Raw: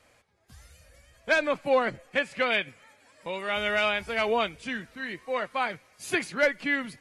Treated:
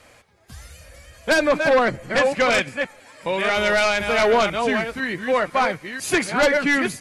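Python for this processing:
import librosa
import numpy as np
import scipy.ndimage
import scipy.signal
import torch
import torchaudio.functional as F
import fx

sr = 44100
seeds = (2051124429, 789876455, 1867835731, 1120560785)

y = fx.reverse_delay(x, sr, ms=500, wet_db=-7.5)
y = fx.fold_sine(y, sr, drive_db=7, ceiling_db=-11.5)
y = fx.dynamic_eq(y, sr, hz=3000.0, q=1.1, threshold_db=-33.0, ratio=4.0, max_db=-4)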